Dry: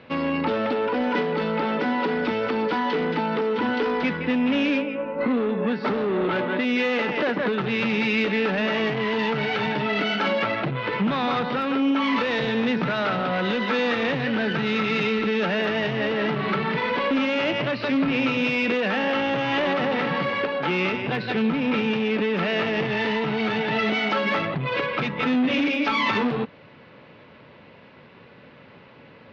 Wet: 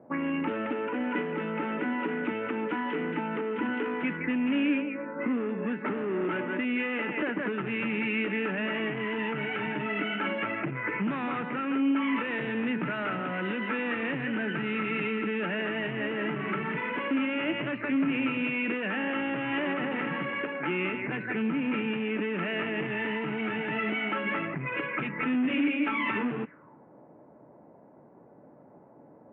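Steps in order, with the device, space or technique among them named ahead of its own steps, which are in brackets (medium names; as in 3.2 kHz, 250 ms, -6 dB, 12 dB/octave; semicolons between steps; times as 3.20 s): envelope filter bass rig (touch-sensitive low-pass 670–2900 Hz up, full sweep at -21.5 dBFS; cabinet simulation 74–2000 Hz, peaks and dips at 95 Hz -9 dB, 310 Hz +7 dB, 510 Hz -5 dB, 750 Hz -5 dB, 1.1 kHz -3 dB); trim -7 dB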